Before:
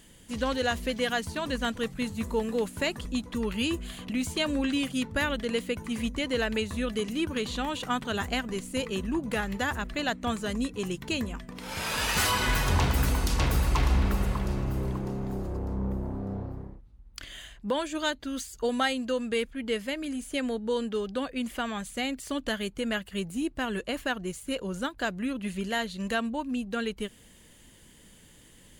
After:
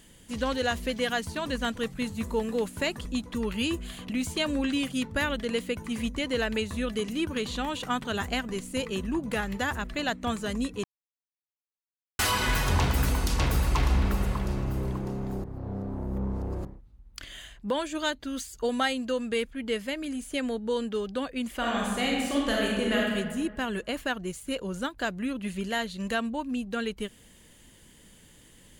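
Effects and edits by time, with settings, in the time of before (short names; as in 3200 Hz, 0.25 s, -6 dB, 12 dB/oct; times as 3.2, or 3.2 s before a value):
10.84–12.19 mute
15.44–16.65 reverse
21.57–23.15 reverb throw, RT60 1.5 s, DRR -3.5 dB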